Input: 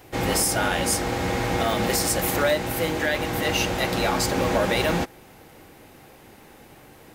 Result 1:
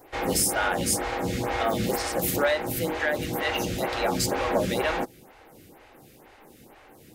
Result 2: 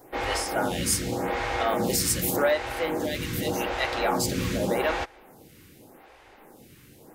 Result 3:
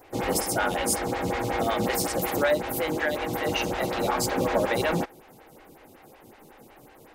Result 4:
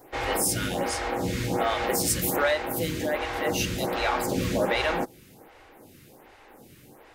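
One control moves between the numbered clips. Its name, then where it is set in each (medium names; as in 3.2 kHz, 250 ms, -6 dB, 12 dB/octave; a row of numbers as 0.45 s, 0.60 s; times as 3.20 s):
lamp-driven phase shifter, rate: 2.1 Hz, 0.85 Hz, 5.4 Hz, 1.3 Hz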